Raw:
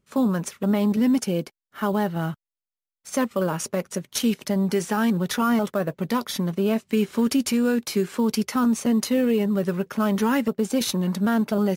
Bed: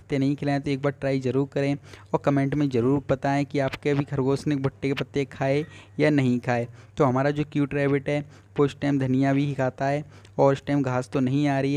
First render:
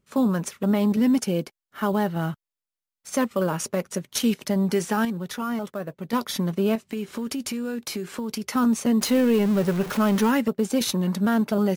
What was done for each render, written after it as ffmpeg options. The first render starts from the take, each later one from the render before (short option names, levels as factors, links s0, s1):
-filter_complex "[0:a]asettb=1/sr,asplit=3[s0][s1][s2];[s0]atrim=end=6.754[s3];[s1]atrim=start=6.75:end=8.48,asetpts=PTS-STARTPTS,afade=t=in:d=0.004:c=qsin,afade=t=out:st=1.726:d=0.004:c=qsin,acompressor=threshold=0.0501:ratio=6:attack=3.2:release=140:knee=1:detection=peak[s4];[s2]atrim=start=8.476[s5];[s3][s4]acrossfade=d=0.004:c1=hsin:c2=qsin[s6];[s6][s5]acrossfade=d=0.004:c1=qsin:c2=hsin,asettb=1/sr,asplit=3[s7][s8][s9];[s7]atrim=end=9.014[s10];[s8]atrim=start=9.01:end=10.31,asetpts=PTS-STARTPTS,afade=t=in:d=0.004:c=qsin,afade=t=out:st=1.296:d=0.004:c=qsin,aeval=exprs='val(0)+0.5*0.0376*sgn(val(0))':c=same[s11];[s9]atrim=start=10.306[s12];[s10][s11]acrossfade=d=0.004:c1=hsin:c2=qsin[s13];[s13][s12]acrossfade=d=0.004:c1=qsin:c2=hsin,asplit=3[s14][s15][s16];[s14]atrim=end=5.052[s17];[s15]atrim=start=5.048:end=6.132,asetpts=PTS-STARTPTS,volume=0.447[s18];[s16]atrim=start=6.128[s19];[s17][s18]acrossfade=d=0.004:c1=hsin:c2=hsin[s20];[s20][s19]acrossfade=d=0.004:c1=hsin:c2=hsin"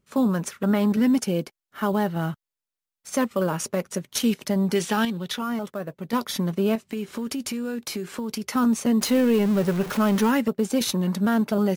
-filter_complex "[0:a]asettb=1/sr,asplit=3[s0][s1][s2];[s0]atrim=end=0.484[s3];[s1]atrim=start=0.48:end=1.06,asetpts=PTS-STARTPTS,afade=t=in:d=0.004:c=qsin,afade=t=out:st=0.576:d=0.004:c=qsin,equalizer=f=1500:t=o:w=0.57:g=8[s4];[s2]atrim=start=1.056[s5];[s3][s4]acrossfade=d=0.004:c1=hsin:c2=qsin[s6];[s6][s5]acrossfade=d=0.004:c1=qsin:c2=hsin,asettb=1/sr,asplit=3[s7][s8][s9];[s7]atrim=end=4.754[s10];[s8]atrim=start=4.75:end=5.39,asetpts=PTS-STARTPTS,afade=t=in:d=0.004:c=qsin,afade=t=out:st=0.636:d=0.004:c=qsin,equalizer=f=3400:t=o:w=0.94:g=9.5[s11];[s9]atrim=start=5.386[s12];[s10][s11]acrossfade=d=0.004:c1=hsin:c2=qsin[s13];[s13][s12]acrossfade=d=0.004:c1=qsin:c2=hsin"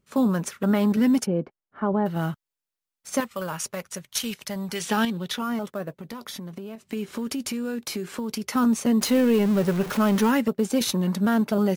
-filter_complex "[0:a]asplit=3[s0][s1][s2];[s0]afade=t=out:st=1.25:d=0.02[s3];[s1]lowpass=1200,afade=t=in:st=1.25:d=0.02,afade=t=out:st=2.05:d=0.02[s4];[s2]afade=t=in:st=2.05:d=0.02[s5];[s3][s4][s5]amix=inputs=3:normalize=0,asettb=1/sr,asplit=3[s6][s7][s8];[s6]atrim=end=3.204[s9];[s7]atrim=start=3.2:end=4.86,asetpts=PTS-STARTPTS,afade=t=in:d=0.004:c=qsin,afade=t=out:st=1.656:d=0.004:c=qsin,equalizer=f=300:t=o:w=2.2:g=-12[s10];[s8]atrim=start=4.856[s11];[s9][s10]acrossfade=d=0.004:c1=hsin:c2=qsin[s12];[s12][s11]acrossfade=d=0.004:c1=qsin:c2=hsin,asettb=1/sr,asplit=3[s13][s14][s15];[s13]atrim=end=5.984[s16];[s14]atrim=start=5.98:end=6.81,asetpts=PTS-STARTPTS,afade=t=in:d=0.004:c=qsin,afade=t=out:st=0.826:d=0.004:c=qsin,acompressor=threshold=0.0251:ratio=16:attack=3.2:release=140:knee=1:detection=peak[s17];[s15]atrim=start=6.806[s18];[s16][s17]acrossfade=d=0.004:c1=hsin:c2=qsin[s19];[s19][s18]acrossfade=d=0.004:c1=qsin:c2=hsin"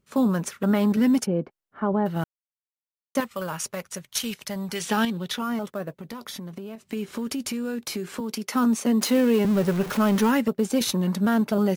-filter_complex "[0:a]asettb=1/sr,asplit=3[s0][s1][s2];[s0]atrim=end=8.204[s3];[s1]atrim=start=8.2:end=9.45,asetpts=PTS-STARTPTS,afade=t=in:d=0.004:c=qsin,afade=t=out:st=1.246:d=0.004:c=qsin,highpass=f=180:w=0.5412,highpass=f=180:w=1.3066[s4];[s2]atrim=start=9.446[s5];[s3][s4]acrossfade=d=0.004:c1=hsin:c2=qsin[s6];[s6][s5]acrossfade=d=0.004:c1=qsin:c2=hsin,asplit=3[s7][s8][s9];[s7]atrim=end=2.24,asetpts=PTS-STARTPTS,afade=t=out:st=2.236:d=0.004:c=hsin[s10];[s8]atrim=start=2.24:end=3.15,asetpts=PTS-STARTPTS,volume=0[s11];[s9]atrim=start=3.15,asetpts=PTS-STARTPTS,afade=t=in:d=0.004:c=hsin[s12];[s10][s11][s12]concat=n=3:v=0:a=1"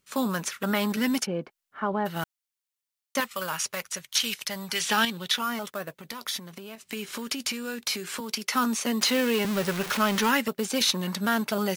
-filter_complex "[0:a]acrossover=split=5600[s0][s1];[s1]acompressor=threshold=0.01:ratio=4:attack=1:release=60[s2];[s0][s2]amix=inputs=2:normalize=0,tiltshelf=f=910:g=-8"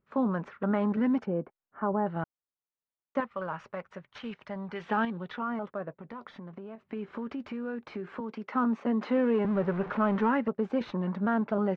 -af "lowpass=1200,aemphasis=mode=reproduction:type=75kf"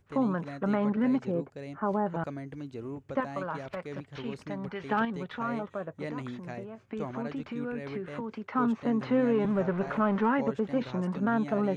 -filter_complex "[1:a]volume=0.141[s0];[0:a][s0]amix=inputs=2:normalize=0"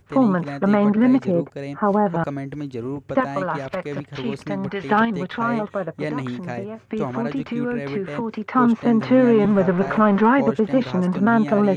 -af "volume=3.35"